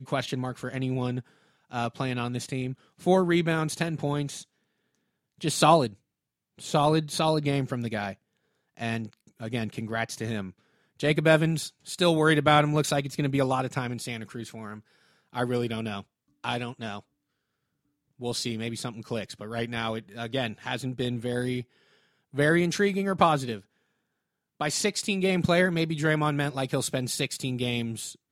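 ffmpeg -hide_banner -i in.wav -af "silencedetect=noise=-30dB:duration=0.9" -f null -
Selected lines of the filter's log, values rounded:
silence_start: 4.38
silence_end: 5.43 | silence_duration: 1.05
silence_start: 16.98
silence_end: 18.23 | silence_duration: 1.25
silence_start: 23.57
silence_end: 24.61 | silence_duration: 1.04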